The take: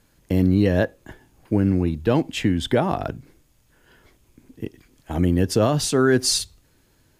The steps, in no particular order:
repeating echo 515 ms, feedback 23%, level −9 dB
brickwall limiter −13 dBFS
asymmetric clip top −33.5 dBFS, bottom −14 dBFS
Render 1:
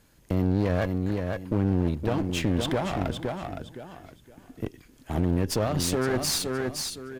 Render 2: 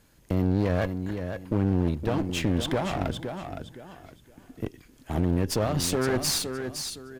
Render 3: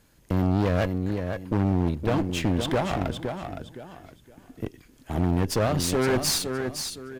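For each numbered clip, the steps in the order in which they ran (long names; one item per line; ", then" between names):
repeating echo, then brickwall limiter, then asymmetric clip
brickwall limiter, then repeating echo, then asymmetric clip
repeating echo, then asymmetric clip, then brickwall limiter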